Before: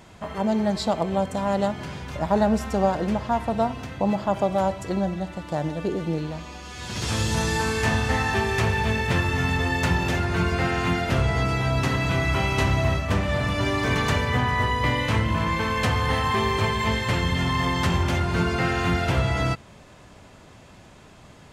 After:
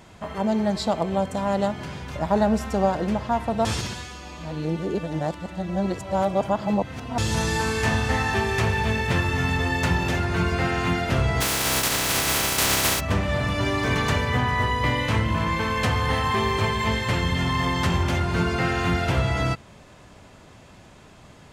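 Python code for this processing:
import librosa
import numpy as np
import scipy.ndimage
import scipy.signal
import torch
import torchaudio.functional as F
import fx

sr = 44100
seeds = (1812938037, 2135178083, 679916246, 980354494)

y = fx.spec_flatten(x, sr, power=0.22, at=(11.4, 12.99), fade=0.02)
y = fx.edit(y, sr, fx.reverse_span(start_s=3.65, length_s=3.53), tone=tone)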